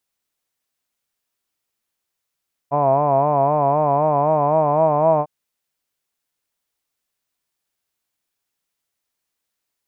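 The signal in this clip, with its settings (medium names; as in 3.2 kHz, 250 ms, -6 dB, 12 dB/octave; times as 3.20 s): formant vowel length 2.55 s, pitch 139 Hz, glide +2 st, vibrato 3.9 Hz, F1 660 Hz, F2 1 kHz, F3 2.4 kHz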